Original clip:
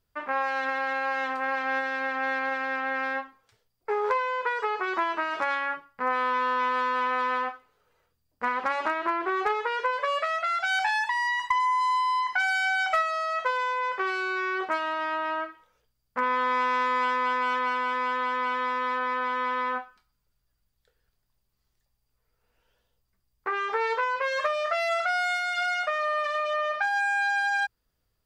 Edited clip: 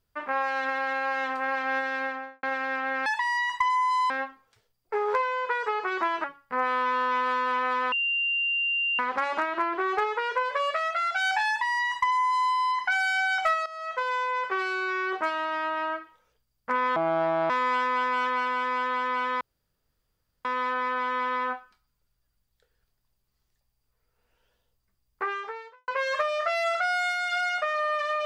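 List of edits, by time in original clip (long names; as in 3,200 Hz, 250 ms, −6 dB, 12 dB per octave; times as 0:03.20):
0:02.00–0:02.43: fade out and dull
0:05.20–0:05.72: remove
0:07.40–0:08.47: beep over 2,780 Hz −23.5 dBFS
0:10.96–0:12.00: duplicate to 0:03.06
0:13.14–0:13.62: fade in linear, from −14.5 dB
0:16.44–0:16.79: play speed 65%
0:18.70: splice in room tone 1.04 s
0:23.49–0:24.13: fade out quadratic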